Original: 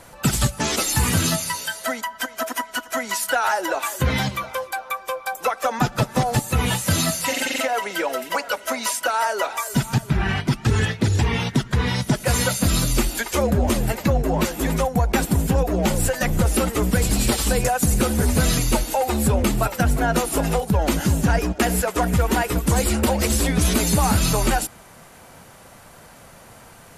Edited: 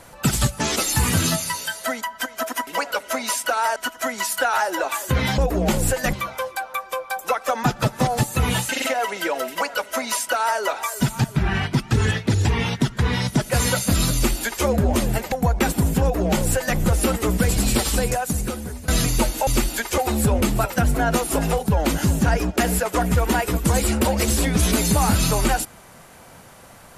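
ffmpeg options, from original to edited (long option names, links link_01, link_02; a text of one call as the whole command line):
ffmpeg -i in.wav -filter_complex "[0:a]asplit=10[link_01][link_02][link_03][link_04][link_05][link_06][link_07][link_08][link_09][link_10];[link_01]atrim=end=2.672[link_11];[link_02]atrim=start=8.238:end=9.332[link_12];[link_03]atrim=start=2.668:end=4.292[link_13];[link_04]atrim=start=15.548:end=16.302[link_14];[link_05]atrim=start=4.288:end=6.852[link_15];[link_06]atrim=start=7.428:end=14.062[link_16];[link_07]atrim=start=14.848:end=18.41,asetpts=PTS-STARTPTS,afade=type=out:start_time=2.552:duration=1.01:silence=0.0841395[link_17];[link_08]atrim=start=18.41:end=19.002,asetpts=PTS-STARTPTS,afade=type=in:duration=0.004:curve=hsin:silence=0.0841395[link_18];[link_09]atrim=start=12.878:end=13.392[link_19];[link_10]atrim=start=18.998[link_20];[link_11][link_12]acrossfade=duration=0.004:curve1=hsin:curve2=hsin[link_21];[link_21][link_13]acrossfade=duration=0.004:curve1=hsin:curve2=hsin[link_22];[link_22][link_14]acrossfade=duration=0.004:curve1=hsin:curve2=hsin[link_23];[link_23][link_15]acrossfade=duration=0.004:curve1=hsin:curve2=hsin[link_24];[link_24][link_16]acrossfade=duration=0.004:curve1=hsin:curve2=hsin[link_25];[link_17][link_18]concat=n=2:v=0:a=1[link_26];[link_25][link_26]acrossfade=duration=0.004:curve1=hsin:curve2=hsin[link_27];[link_27][link_19]acrossfade=duration=0.004:curve1=hsin:curve2=hsin[link_28];[link_28][link_20]acrossfade=duration=0.004:curve1=hsin:curve2=hsin" out.wav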